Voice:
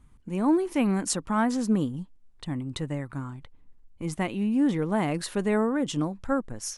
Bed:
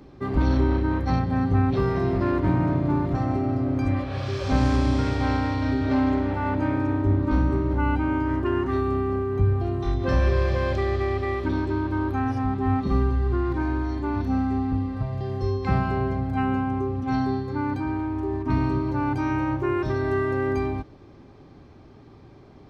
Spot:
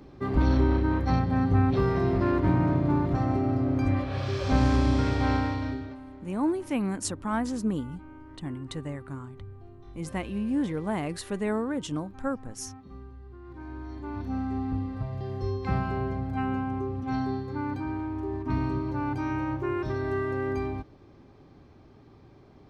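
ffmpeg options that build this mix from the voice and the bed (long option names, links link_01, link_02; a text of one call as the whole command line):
ffmpeg -i stem1.wav -i stem2.wav -filter_complex "[0:a]adelay=5950,volume=-4dB[link_01];[1:a]volume=16.5dB,afade=type=out:start_time=5.36:duration=0.6:silence=0.0841395,afade=type=in:start_time=13.4:duration=1.3:silence=0.125893[link_02];[link_01][link_02]amix=inputs=2:normalize=0" out.wav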